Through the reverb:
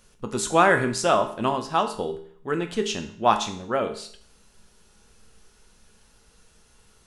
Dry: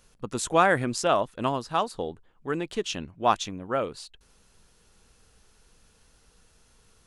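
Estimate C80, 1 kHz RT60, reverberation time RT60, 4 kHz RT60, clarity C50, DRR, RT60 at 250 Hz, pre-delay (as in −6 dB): 14.0 dB, 0.55 s, 0.55 s, 0.55 s, 10.5 dB, 5.0 dB, 0.55 s, 5 ms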